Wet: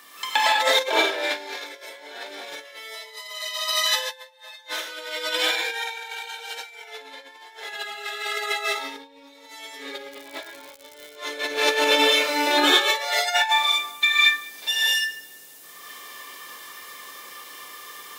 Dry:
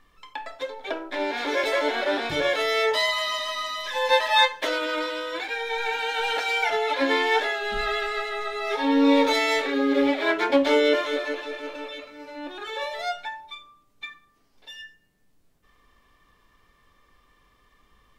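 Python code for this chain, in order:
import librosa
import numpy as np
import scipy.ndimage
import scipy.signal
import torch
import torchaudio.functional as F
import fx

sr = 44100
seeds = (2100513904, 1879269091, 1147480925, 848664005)

y = scipy.signal.sosfilt(scipy.signal.butter(2, 360.0, 'highpass', fs=sr, output='sos'), x)
y = fx.hum_notches(y, sr, base_hz=50, count=10)
y = fx.echo_feedback(y, sr, ms=197, feedback_pct=42, wet_db=-22.5)
y = fx.rev_gated(y, sr, seeds[0], gate_ms=250, shape='rising', drr_db=-7.5)
y = fx.over_compress(y, sr, threshold_db=-29.0, ratio=-0.5)
y = fx.high_shelf(y, sr, hz=8600.0, db=7.5)
y = fx.dmg_crackle(y, sr, seeds[1], per_s=190.0, level_db=-39.0, at=(10.11, 11.15), fade=0.02)
y = fx.high_shelf(y, sr, hz=3300.0, db=11.5)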